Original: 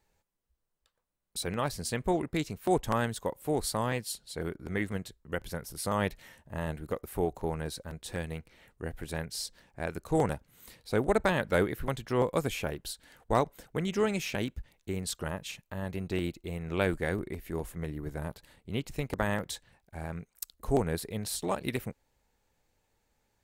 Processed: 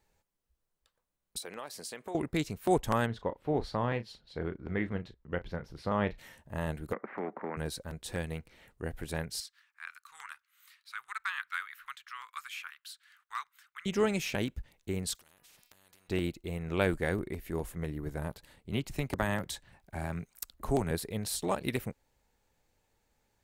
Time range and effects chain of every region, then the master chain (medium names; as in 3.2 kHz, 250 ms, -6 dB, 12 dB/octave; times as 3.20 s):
1.38–2.15 s: high-pass 370 Hz + compression 3:1, threshold -40 dBFS
3.06–6.18 s: distance through air 260 m + doubling 34 ms -12.5 dB
6.93–7.57 s: Chebyshev band-pass 200–2000 Hz, order 4 + dynamic bell 770 Hz, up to -5 dB, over -45 dBFS, Q 1.7 + spectrum-flattening compressor 2:1
9.40–13.86 s: elliptic high-pass 1.2 kHz, stop band 50 dB + peaking EQ 10 kHz -9.5 dB 2.5 oct
15.15–16.09 s: de-hum 242.5 Hz, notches 23 + compression 8:1, threshold -49 dBFS + spectrum-flattening compressor 4:1
18.72–20.91 s: band-stop 480 Hz, Q 6.1 + three bands compressed up and down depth 40%
whole clip: none